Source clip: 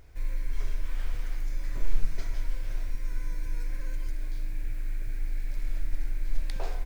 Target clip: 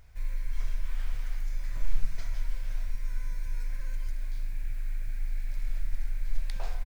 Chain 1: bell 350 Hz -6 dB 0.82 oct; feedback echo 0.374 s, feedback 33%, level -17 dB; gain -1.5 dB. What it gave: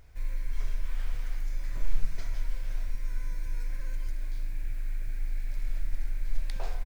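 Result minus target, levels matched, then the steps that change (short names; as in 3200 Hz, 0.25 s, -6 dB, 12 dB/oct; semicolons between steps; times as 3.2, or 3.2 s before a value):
250 Hz band +3.0 dB
change: bell 350 Hz -14.5 dB 0.82 oct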